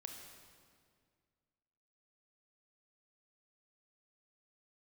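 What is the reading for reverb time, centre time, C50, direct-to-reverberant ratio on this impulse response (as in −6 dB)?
2.0 s, 59 ms, 4.0 dB, 2.5 dB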